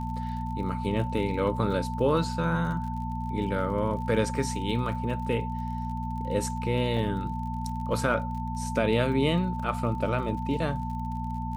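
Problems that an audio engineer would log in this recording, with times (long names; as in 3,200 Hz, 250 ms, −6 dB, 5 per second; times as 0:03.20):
surface crackle 41 per second −38 dBFS
mains hum 60 Hz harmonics 4 −33 dBFS
whistle 890 Hz −35 dBFS
0:06.97: drop-out 2.2 ms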